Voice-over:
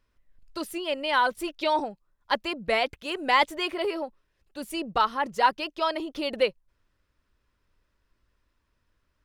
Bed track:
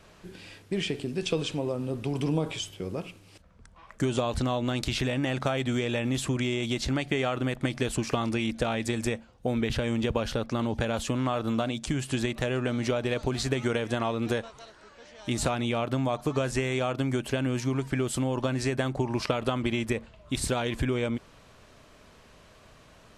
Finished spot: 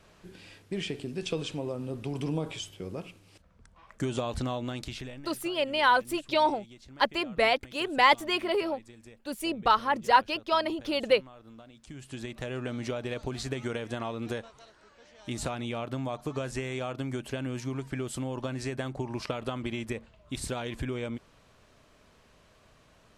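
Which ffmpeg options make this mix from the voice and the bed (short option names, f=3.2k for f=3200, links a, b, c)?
-filter_complex "[0:a]adelay=4700,volume=0.5dB[a];[1:a]volume=12.5dB,afade=t=out:st=4.48:d=0.81:silence=0.11885,afade=t=in:st=11.76:d=0.85:silence=0.149624[b];[a][b]amix=inputs=2:normalize=0"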